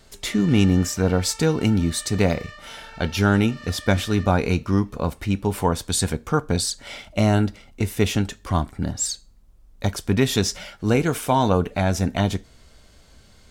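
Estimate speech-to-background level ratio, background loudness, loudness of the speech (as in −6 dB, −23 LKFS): 19.0 dB, −41.5 LKFS, −22.5 LKFS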